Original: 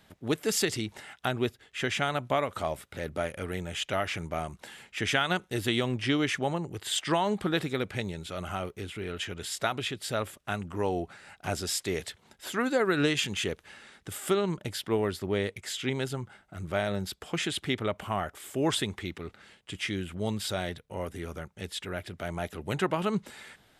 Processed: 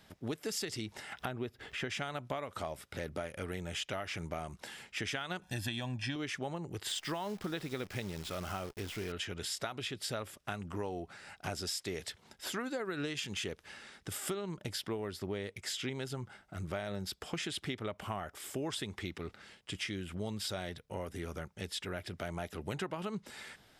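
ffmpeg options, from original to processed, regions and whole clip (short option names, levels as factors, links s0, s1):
-filter_complex "[0:a]asettb=1/sr,asplit=3[s0][s1][s2];[s0]atrim=end=1.124[s3];[s1]atrim=start=1.12:end=1.9,asetpts=PTS-STARTPTS,afade=t=in:d=0.004:c=qsin,afade=t=out:st=0.776:d=0.004:c=qsin,equalizer=f=7500:t=o:w=2.2:g=-9,acompressor=mode=upward:threshold=0.0251:ratio=2.5:attack=3.2:release=140:knee=2.83:detection=peak[s4];[s2]atrim=start=1.896[s5];[s3][s4]acrossfade=d=0.004:c1=hsin:c2=qsin[s6];[s6][s5]acrossfade=d=0.004:c1=qsin:c2=hsin,asettb=1/sr,asplit=3[s7][s8][s9];[s7]atrim=end=5.424[s10];[s8]atrim=start=5.42:end=6.16,asetpts=PTS-STARTPTS,afade=t=in:d=0.004:c=qsin,afade=t=out:st=0.736:d=0.004:c=qsin,aecho=1:1:1.2:0.93,atrim=end_sample=32634,acompressor=mode=upward:threshold=0.00562:ratio=2.5:attack=3.2:release=140:knee=2.83:detection=peak[s11];[s9]atrim=start=6.156[s12];[s10][s11]acrossfade=d=0.004:c1=hsin:c2=qsin[s13];[s13][s12]acrossfade=d=0.004:c1=qsin:c2=hsin,asettb=1/sr,asplit=3[s14][s15][s16];[s14]atrim=end=6.884[s17];[s15]atrim=start=6.88:end=9.12,asetpts=PTS-STARTPTS,afade=t=in:d=0.004:c=qsin,afade=t=out:st=2.236:d=0.004:c=qsin,highshelf=f=9700:g=-5.5,acrusher=bits=8:dc=4:mix=0:aa=0.000001[s18];[s16]atrim=start=9.116[s19];[s17][s18]acrossfade=d=0.004:c1=hsin:c2=qsin[s20];[s20][s19]acrossfade=d=0.004:c1=qsin:c2=hsin,equalizer=f=5200:t=o:w=0.32:g=5.5,acompressor=threshold=0.02:ratio=6,volume=0.891"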